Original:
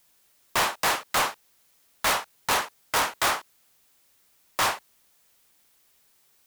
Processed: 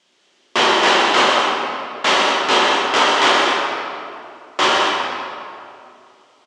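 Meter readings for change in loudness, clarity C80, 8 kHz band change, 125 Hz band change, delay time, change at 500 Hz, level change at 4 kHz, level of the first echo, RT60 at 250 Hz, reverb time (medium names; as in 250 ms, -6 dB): +10.5 dB, -1.5 dB, +2.5 dB, no reading, 126 ms, +15.0 dB, +14.0 dB, -5.5 dB, 2.6 s, 2.5 s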